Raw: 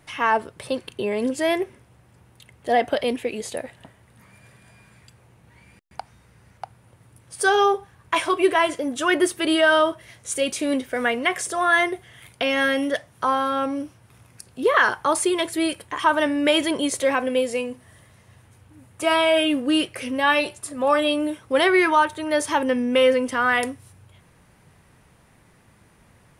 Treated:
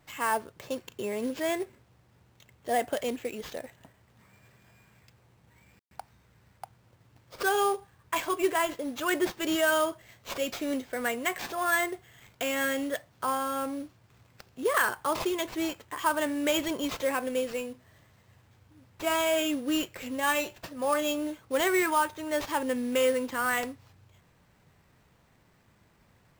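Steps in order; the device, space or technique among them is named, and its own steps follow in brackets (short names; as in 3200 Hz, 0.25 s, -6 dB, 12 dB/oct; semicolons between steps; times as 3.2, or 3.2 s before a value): early companding sampler (sample-rate reducer 10000 Hz, jitter 0%; companded quantiser 6-bit); gain -8 dB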